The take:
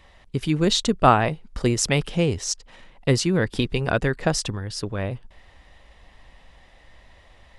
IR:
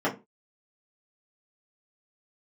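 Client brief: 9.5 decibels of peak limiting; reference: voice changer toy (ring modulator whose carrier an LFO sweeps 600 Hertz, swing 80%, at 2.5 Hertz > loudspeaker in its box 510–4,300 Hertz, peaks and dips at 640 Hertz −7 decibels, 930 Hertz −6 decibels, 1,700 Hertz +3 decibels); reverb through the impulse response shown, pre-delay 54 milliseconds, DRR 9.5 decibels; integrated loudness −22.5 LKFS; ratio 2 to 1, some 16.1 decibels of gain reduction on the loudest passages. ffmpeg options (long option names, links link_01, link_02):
-filter_complex "[0:a]acompressor=threshold=-41dB:ratio=2,alimiter=level_in=3dB:limit=-24dB:level=0:latency=1,volume=-3dB,asplit=2[link_01][link_02];[1:a]atrim=start_sample=2205,adelay=54[link_03];[link_02][link_03]afir=irnorm=-1:irlink=0,volume=-22dB[link_04];[link_01][link_04]amix=inputs=2:normalize=0,aeval=exprs='val(0)*sin(2*PI*600*n/s+600*0.8/2.5*sin(2*PI*2.5*n/s))':channel_layout=same,highpass=510,equalizer=frequency=640:width_type=q:width=4:gain=-7,equalizer=frequency=930:width_type=q:width=4:gain=-6,equalizer=frequency=1700:width_type=q:width=4:gain=3,lowpass=frequency=4300:width=0.5412,lowpass=frequency=4300:width=1.3066,volume=22.5dB"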